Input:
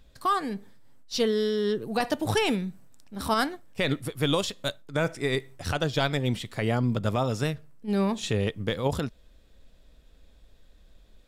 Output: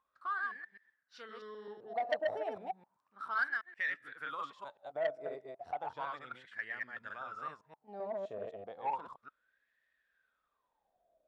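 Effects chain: chunks repeated in reverse 129 ms, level -2 dB; wah-wah 0.33 Hz 620–1800 Hz, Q 15; transformer saturation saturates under 1.5 kHz; trim +4 dB

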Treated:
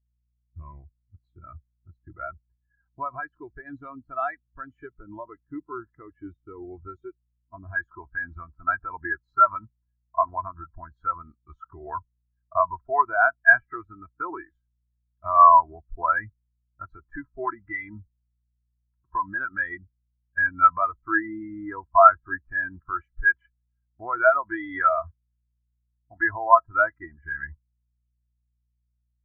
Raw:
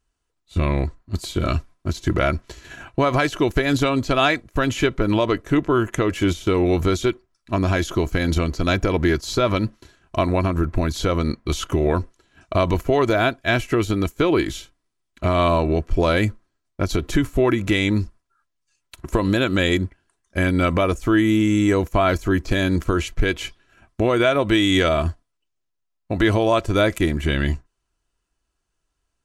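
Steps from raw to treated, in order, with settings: high-order bell 1.2 kHz +9.5 dB, from 7.74 s +16 dB; hum 60 Hz, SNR 18 dB; spectral contrast expander 2.5:1; trim -7 dB

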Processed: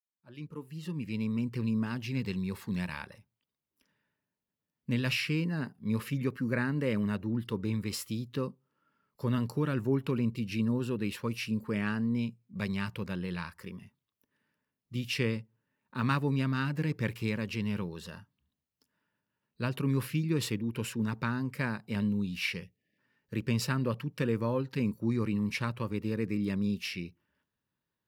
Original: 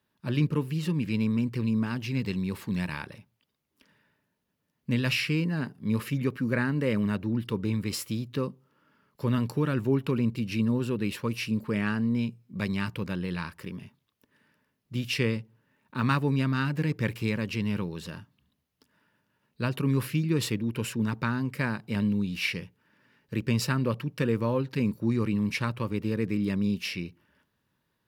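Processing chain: fade-in on the opening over 1.62 s; spectral selection erased 22.63–22.98 s, 800–1700 Hz; spectral noise reduction 8 dB; trim -3.5 dB

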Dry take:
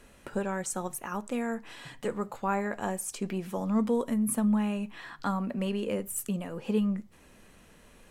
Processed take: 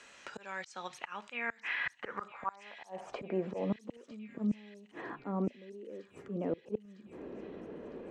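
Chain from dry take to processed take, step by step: dynamic bell 2.2 kHz, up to +4 dB, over -54 dBFS, Q 3.3; band-pass sweep 7.6 kHz -> 380 Hz, 0.09–3.85 s; slow attack 265 ms; in parallel at -1 dB: gain riding within 3 dB 2 s; on the sum: inverted gate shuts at -31 dBFS, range -29 dB; distance through air 180 m; on a send: feedback echo behind a high-pass 955 ms, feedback 65%, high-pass 3.2 kHz, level -12 dB; on the sum: three bands compressed up and down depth 40%; trim +10.5 dB

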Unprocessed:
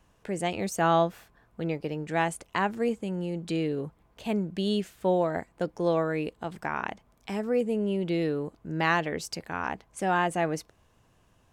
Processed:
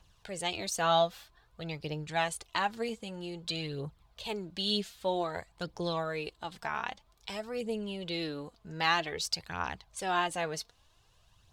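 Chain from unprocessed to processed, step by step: graphic EQ 250/500/2000/4000 Hz -11/-4/-4/+11 dB; phaser 0.52 Hz, delay 4.8 ms, feedback 48%; trim -2.5 dB

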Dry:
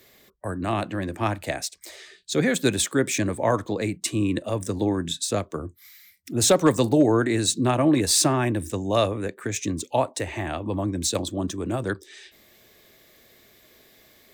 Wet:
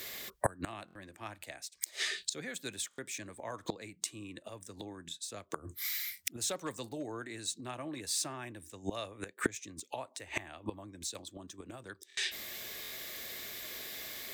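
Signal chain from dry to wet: tilt shelf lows -5.5 dB, about 850 Hz; inverted gate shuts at -23 dBFS, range -27 dB; buffer glitch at 0.86/2.89/12.08/12.82 s, samples 1024, times 3; trim +8 dB

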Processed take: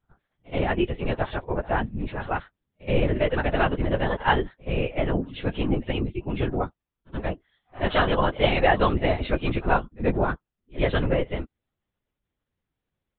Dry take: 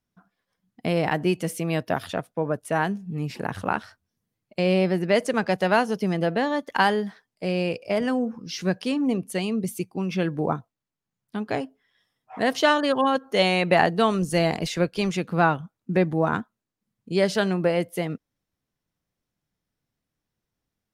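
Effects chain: LPC vocoder at 8 kHz whisper; plain phase-vocoder stretch 0.63×; pre-echo 76 ms -21.5 dB; trim +3.5 dB

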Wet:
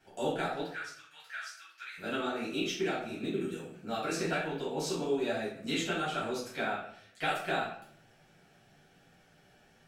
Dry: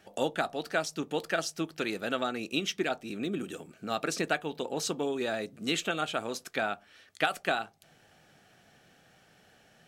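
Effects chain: 0.61–1.98 s: ladder high-pass 1.3 kHz, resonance 45%; reverberation RT60 0.65 s, pre-delay 4 ms, DRR -9 dB; flange 1.1 Hz, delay 7.4 ms, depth 9.7 ms, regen -51%; trim -8 dB

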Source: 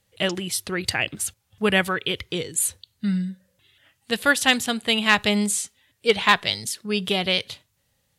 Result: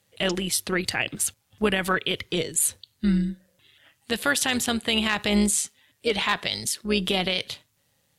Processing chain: high-pass 100 Hz; peak limiter -14.5 dBFS, peak gain reduction 10.5 dB; AM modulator 150 Hz, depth 30%; trim +4 dB

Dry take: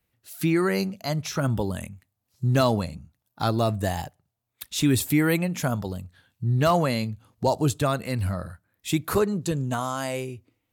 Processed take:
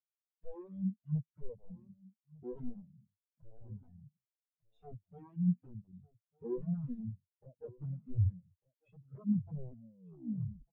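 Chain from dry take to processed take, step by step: tape stop on the ending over 0.99 s; graphic EQ 125/250/500/2000 Hz +11/+10/+8/+11 dB; compression 3:1, threshold -33 dBFS, peak gain reduction 21 dB; dynamic bell 910 Hz, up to -7 dB, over -47 dBFS, Q 1.3; integer overflow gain 25 dB; delay 1199 ms -6 dB; spectral contrast expander 4:1

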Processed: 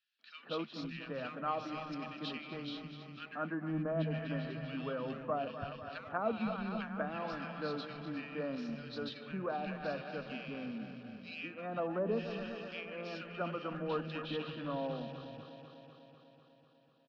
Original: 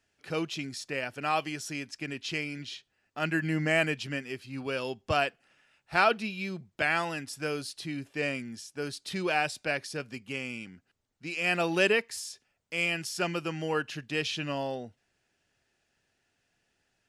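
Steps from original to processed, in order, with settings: backward echo that repeats 124 ms, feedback 83%, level -12.5 dB; low-pass that closes with the level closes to 670 Hz, closed at -22.5 dBFS; cabinet simulation 140–5300 Hz, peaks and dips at 220 Hz +9 dB, 370 Hz -9 dB, 820 Hz -5 dB, 1.2 kHz +5 dB, 2.1 kHz -10 dB, 3.9 kHz +6 dB; in parallel at -6.5 dB: one-sided clip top -35.5 dBFS; on the sum: distance through air 190 m; three bands offset in time highs, mids, lows 190/520 ms, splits 180/1800 Hz; trim -5.5 dB

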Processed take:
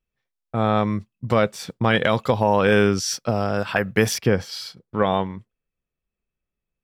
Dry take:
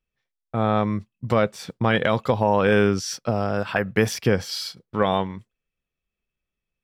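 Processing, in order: treble shelf 3.4 kHz +5 dB, from 4.18 s -5 dB; tape noise reduction on one side only decoder only; trim +1 dB

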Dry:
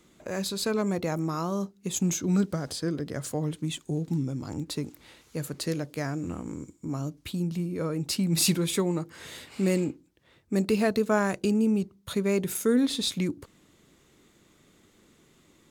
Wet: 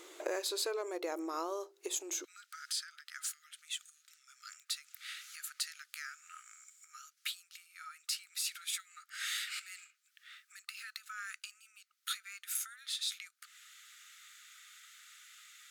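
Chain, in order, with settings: peak limiter -20 dBFS, peak gain reduction 9 dB; compression 10:1, threshold -41 dBFS, peak gain reduction 17.5 dB; brick-wall FIR high-pass 310 Hz, from 2.23 s 1.2 kHz; trim +9 dB

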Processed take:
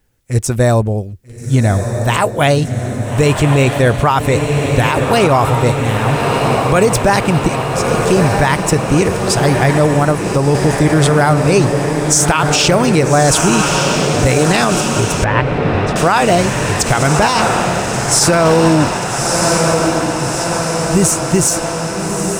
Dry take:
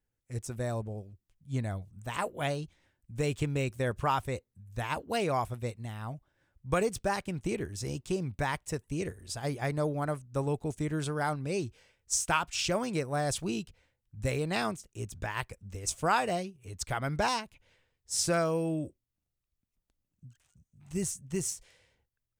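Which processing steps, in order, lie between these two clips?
7.48–8.04 s: amplifier tone stack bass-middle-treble 5-5-5; echo that smears into a reverb 1272 ms, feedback 67%, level -6.5 dB; 9.85–10.55 s: compression, threshold -30 dBFS, peak gain reduction 5.5 dB; 15.24–15.96 s: distance through air 390 m; loudness maximiser +23 dB; trim -1 dB

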